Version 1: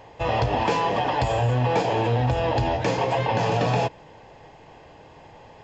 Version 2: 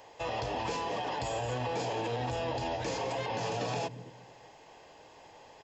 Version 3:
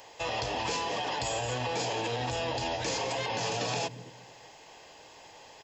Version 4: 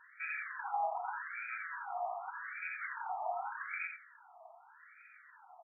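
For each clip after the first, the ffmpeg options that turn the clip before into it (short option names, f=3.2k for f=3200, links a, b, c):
-filter_complex "[0:a]bass=f=250:g=-11,treble=f=4k:g=10,acrossover=split=340[a][b];[a]aecho=1:1:224|448|672|896:0.531|0.143|0.0387|0.0104[c];[b]alimiter=limit=-21.5dB:level=0:latency=1:release=46[d];[c][d]amix=inputs=2:normalize=0,volume=-6dB"
-af "highshelf=f=2.1k:g=9.5"
-af "aecho=1:1:87|174|261|348:0.473|0.132|0.0371|0.0104,afreqshift=-180,afftfilt=real='re*between(b*sr/1024,900*pow(1800/900,0.5+0.5*sin(2*PI*0.84*pts/sr))/1.41,900*pow(1800/900,0.5+0.5*sin(2*PI*0.84*pts/sr))*1.41)':imag='im*between(b*sr/1024,900*pow(1800/900,0.5+0.5*sin(2*PI*0.84*pts/sr))/1.41,900*pow(1800/900,0.5+0.5*sin(2*PI*0.84*pts/sr))*1.41)':win_size=1024:overlap=0.75,volume=1.5dB"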